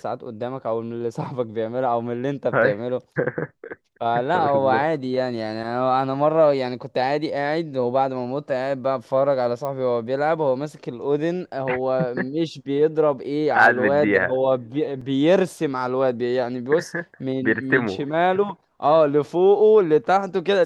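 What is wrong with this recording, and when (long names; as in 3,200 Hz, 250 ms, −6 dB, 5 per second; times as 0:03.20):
0:09.65: click −17 dBFS
0:15.01: drop-out 4.2 ms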